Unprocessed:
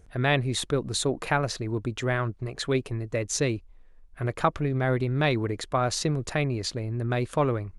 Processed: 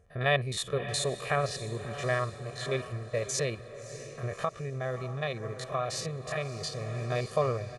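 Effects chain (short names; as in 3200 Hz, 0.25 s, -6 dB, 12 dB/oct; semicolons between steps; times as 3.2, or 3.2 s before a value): stepped spectrum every 50 ms; diffused feedback echo 0.611 s, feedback 52%, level -11.5 dB; 4.3–6.74 compressor 3:1, threshold -28 dBFS, peak gain reduction 7.5 dB; HPF 190 Hz 6 dB/oct; comb 1.7 ms, depth 87%; mismatched tape noise reduction decoder only; gain -3.5 dB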